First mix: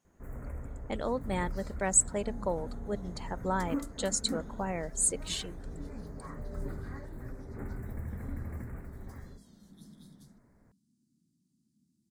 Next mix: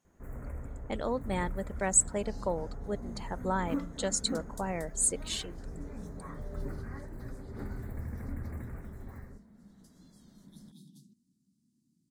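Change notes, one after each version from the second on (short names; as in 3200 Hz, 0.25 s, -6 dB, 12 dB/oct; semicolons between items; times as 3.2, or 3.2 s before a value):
second sound: entry +0.75 s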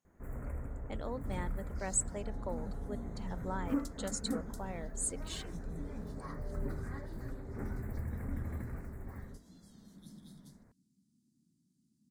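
speech -8.5 dB; second sound: entry -0.50 s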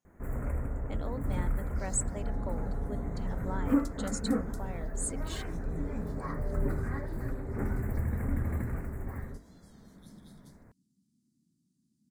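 first sound +7.5 dB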